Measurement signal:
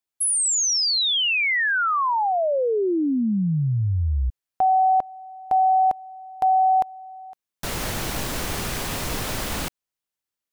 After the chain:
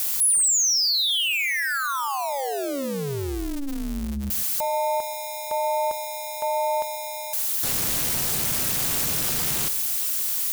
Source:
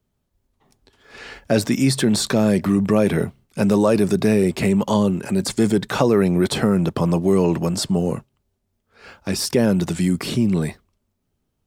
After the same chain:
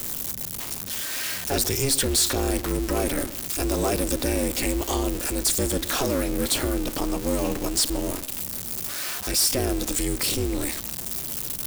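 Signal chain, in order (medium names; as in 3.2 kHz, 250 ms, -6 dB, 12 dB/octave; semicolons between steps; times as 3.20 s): jump at every zero crossing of -23.5 dBFS; pre-emphasis filter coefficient 0.8; waveshaping leveller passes 2; filtered feedback delay 131 ms, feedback 32%, low-pass 2 kHz, level -17 dB; ring modulator 140 Hz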